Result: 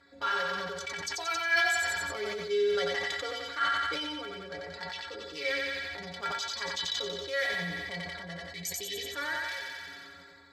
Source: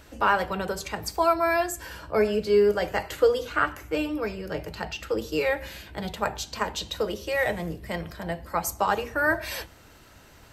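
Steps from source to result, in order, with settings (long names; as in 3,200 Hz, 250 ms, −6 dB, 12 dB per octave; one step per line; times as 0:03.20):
adaptive Wiener filter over 15 samples
meter weighting curve D
healed spectral selection 0:08.43–0:09.08, 490–1,800 Hz before
parametric band 3,100 Hz +8.5 dB 2.5 octaves
notch filter 2,700 Hz, Q 5.7
in parallel at −1 dB: downward compressor, threshold −29 dBFS, peak gain reduction 18 dB
on the sum: stiff-string resonator 83 Hz, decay 0.45 s, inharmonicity 0.03
on a send: feedback echo with a high-pass in the loop 90 ms, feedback 66%, high-pass 390 Hz, level −5 dB
on the sum: level that may fall only so fast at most 22 dB per second
level −5.5 dB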